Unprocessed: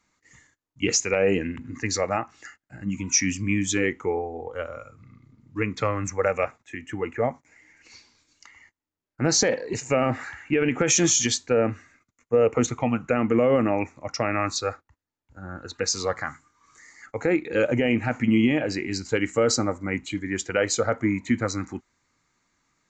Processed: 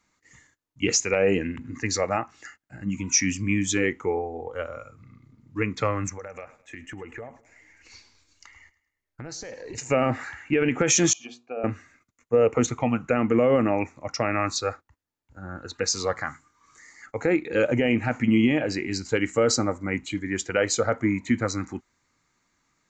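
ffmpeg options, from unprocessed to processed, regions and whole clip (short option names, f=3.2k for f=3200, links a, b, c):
-filter_complex "[0:a]asettb=1/sr,asplit=3[a][b][c];[a]atrim=end=6.094[d];[b]atrim=start=6.09:end=9.78,asetpts=PTS-STARTPTS,afade=t=in:d=0.004:c=qsin,afade=t=out:st=3.686:d=0.004:c=qsin,asubboost=boost=7:cutoff=75,acompressor=threshold=-34dB:ratio=12:attack=3.2:release=140:knee=1:detection=peak,aecho=1:1:105|210|315|420:0.112|0.0516|0.0237|0.0109,atrim=end_sample=162729[e];[c]atrim=start=9.776[f];[d][e]acrossfade=d=0.004:c1=hsin:c2=qsin[g];[g][f]acrossfade=d=0.004:c1=qsin:c2=hsin,asettb=1/sr,asplit=3[h][i][j];[h]atrim=end=11.134[k];[i]atrim=start=11.13:end=11.64,asetpts=PTS-STARTPTS,afade=t=in:d=0.004:c=qsin,afade=t=out:st=0.506:d=0.004:c=qsin,asplit=3[l][m][n];[l]bandpass=f=730:t=q:w=8,volume=0dB[o];[m]bandpass=f=1.09k:t=q:w=8,volume=-6dB[p];[n]bandpass=f=2.44k:t=q:w=8,volume=-9dB[q];[o][p][q]amix=inputs=3:normalize=0,equalizer=f=250:t=o:w=0.93:g=10.5,bandreject=f=60:t=h:w=6,bandreject=f=120:t=h:w=6,bandreject=f=180:t=h:w=6,bandreject=f=240:t=h:w=6,bandreject=f=300:t=h:w=6,bandreject=f=360:t=h:w=6,bandreject=f=420:t=h:w=6,bandreject=f=480:t=h:w=6[r];[j]atrim=start=11.636[s];[k][r]acrossfade=d=0.004:c1=hsin:c2=qsin[t];[t][s]acrossfade=d=0.004:c1=qsin:c2=hsin"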